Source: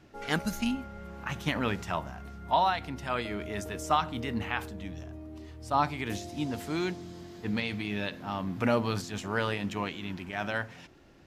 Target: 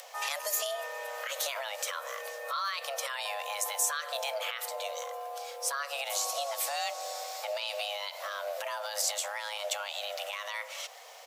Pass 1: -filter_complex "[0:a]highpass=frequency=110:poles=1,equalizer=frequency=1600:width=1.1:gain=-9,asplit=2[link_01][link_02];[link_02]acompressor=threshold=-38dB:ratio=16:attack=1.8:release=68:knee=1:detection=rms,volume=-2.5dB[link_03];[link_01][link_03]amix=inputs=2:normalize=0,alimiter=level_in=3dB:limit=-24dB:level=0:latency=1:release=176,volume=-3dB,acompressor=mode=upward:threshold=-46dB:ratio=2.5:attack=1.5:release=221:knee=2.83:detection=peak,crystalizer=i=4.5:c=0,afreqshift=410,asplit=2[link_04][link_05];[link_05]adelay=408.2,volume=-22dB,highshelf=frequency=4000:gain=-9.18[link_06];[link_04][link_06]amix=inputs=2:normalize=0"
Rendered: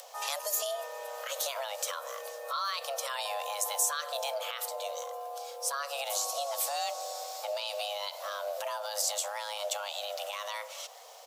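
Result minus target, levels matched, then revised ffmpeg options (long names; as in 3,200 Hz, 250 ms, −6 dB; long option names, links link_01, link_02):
2,000 Hz band −4.0 dB
-filter_complex "[0:a]highpass=frequency=110:poles=1,asplit=2[link_01][link_02];[link_02]acompressor=threshold=-38dB:ratio=16:attack=1.8:release=68:knee=1:detection=rms,volume=-2.5dB[link_03];[link_01][link_03]amix=inputs=2:normalize=0,alimiter=level_in=3dB:limit=-24dB:level=0:latency=1:release=176,volume=-3dB,acompressor=mode=upward:threshold=-46dB:ratio=2.5:attack=1.5:release=221:knee=2.83:detection=peak,crystalizer=i=4.5:c=0,afreqshift=410,asplit=2[link_04][link_05];[link_05]adelay=408.2,volume=-22dB,highshelf=frequency=4000:gain=-9.18[link_06];[link_04][link_06]amix=inputs=2:normalize=0"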